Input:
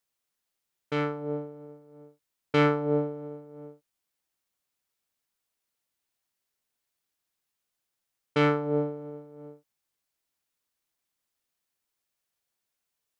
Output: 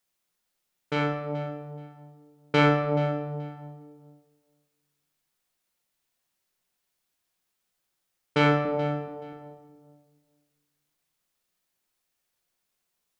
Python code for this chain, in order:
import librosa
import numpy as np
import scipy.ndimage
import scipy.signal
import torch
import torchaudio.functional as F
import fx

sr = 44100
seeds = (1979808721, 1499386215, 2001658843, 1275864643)

y = fx.highpass(x, sr, hz=270.0, slope=12, at=(8.65, 9.33))
y = fx.echo_feedback(y, sr, ms=428, feedback_pct=18, wet_db=-16)
y = fx.room_shoebox(y, sr, seeds[0], volume_m3=470.0, walls='mixed', distance_m=0.96)
y = F.gain(torch.from_numpy(y), 2.5).numpy()